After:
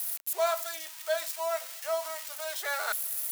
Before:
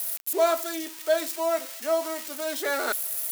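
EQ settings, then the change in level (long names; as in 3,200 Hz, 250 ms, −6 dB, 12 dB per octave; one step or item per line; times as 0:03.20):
high-pass filter 670 Hz 24 dB per octave
−3.0 dB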